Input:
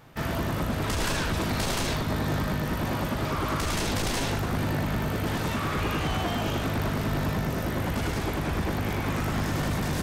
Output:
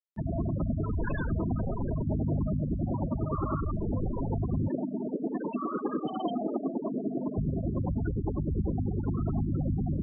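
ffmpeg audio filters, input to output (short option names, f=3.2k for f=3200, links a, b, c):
-filter_complex "[0:a]asettb=1/sr,asplit=3[a][b][c];[a]atrim=end=4.684[d];[b]atrim=start=4.68:end=7.38,asetpts=PTS-STARTPTS,afade=t=in:d=0.004:c=qsin,afade=t=out:st=2.696:d=0.004:c=qsin,lowshelf=f=170:t=q:w=1.5:g=-14[e];[c]atrim=start=7.376[f];[d][e]acrossfade=d=0.004:c1=hsin:c2=qsin[g];[g][f]acrossfade=d=0.004:c1=qsin:c2=hsin,afftfilt=real='re*gte(hypot(re,im),0.112)':imag='im*gte(hypot(re,im),0.112)':win_size=1024:overlap=0.75,acompressor=mode=upward:threshold=-46dB:ratio=2.5"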